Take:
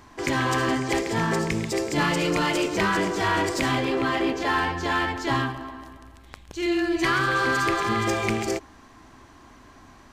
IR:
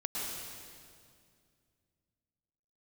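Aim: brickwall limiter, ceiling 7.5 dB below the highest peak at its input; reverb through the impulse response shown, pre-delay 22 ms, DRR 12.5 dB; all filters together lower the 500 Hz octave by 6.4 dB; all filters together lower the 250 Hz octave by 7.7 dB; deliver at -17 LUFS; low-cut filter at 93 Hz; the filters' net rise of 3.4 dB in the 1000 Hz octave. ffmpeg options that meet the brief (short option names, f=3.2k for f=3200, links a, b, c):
-filter_complex "[0:a]highpass=93,equalizer=f=250:t=o:g=-8.5,equalizer=f=500:t=o:g=-7,equalizer=f=1k:t=o:g=6,alimiter=limit=-18dB:level=0:latency=1,asplit=2[a][b];[1:a]atrim=start_sample=2205,adelay=22[c];[b][c]afir=irnorm=-1:irlink=0,volume=-16.5dB[d];[a][d]amix=inputs=2:normalize=0,volume=10dB"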